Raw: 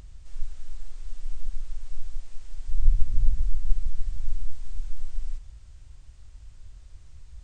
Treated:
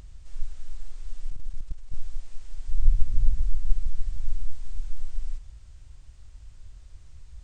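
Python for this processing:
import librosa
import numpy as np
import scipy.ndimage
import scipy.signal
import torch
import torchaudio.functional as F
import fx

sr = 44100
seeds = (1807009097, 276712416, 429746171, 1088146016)

y = fx.level_steps(x, sr, step_db=11, at=(1.3, 1.94))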